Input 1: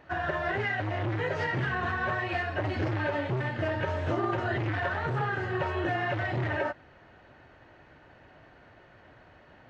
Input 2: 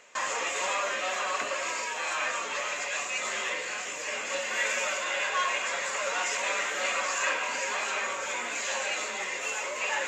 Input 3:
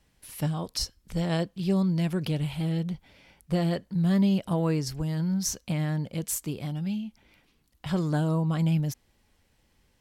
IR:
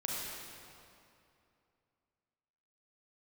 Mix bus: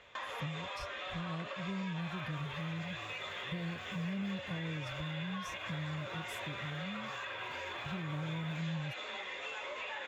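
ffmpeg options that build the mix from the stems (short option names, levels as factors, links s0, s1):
-filter_complex "[0:a]acrusher=bits=3:mode=log:mix=0:aa=0.000001,adelay=1900,volume=0.158[s0];[1:a]lowpass=3500,flanger=delay=9:depth=6.8:regen=-74:speed=0.53:shape=sinusoidal,volume=1.26[s1];[2:a]equalizer=f=100:w=0.71:g=14.5,volume=0.188[s2];[s0][s1]amix=inputs=2:normalize=0,equalizer=f=3500:w=7.6:g=15,alimiter=level_in=1.5:limit=0.0631:level=0:latency=1:release=196,volume=0.668,volume=1[s3];[s2][s3]amix=inputs=2:normalize=0,highshelf=f=5700:g=-6.5,acompressor=threshold=0.00794:ratio=2"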